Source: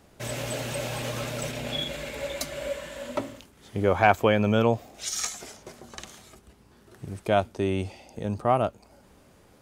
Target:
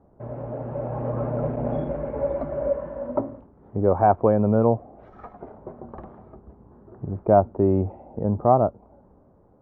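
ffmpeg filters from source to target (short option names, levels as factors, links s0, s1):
-filter_complex "[0:a]dynaudnorm=f=190:g=11:m=2.82,asettb=1/sr,asplit=3[s0][s1][s2];[s0]atrim=end=1.564[s3];[s1]atrim=start=1.56:end=2.13,asetpts=PTS-STARTPTS,afade=t=in:d=0.004:c=qsin,afade=t=out:st=0.566:d=0.004:c=qsin,agate=range=0.0224:threshold=0.0562:ratio=3:detection=peak[s4];[s2]atrim=start=2.126[s5];[s3][s4]acrossfade=d=0.004:c1=hsin:c2=qsin[s6];[s6][s5]acrossfade=d=0.004:c1=qsin:c2=hsin,lowpass=f=1000:w=0.5412,lowpass=f=1000:w=1.3066"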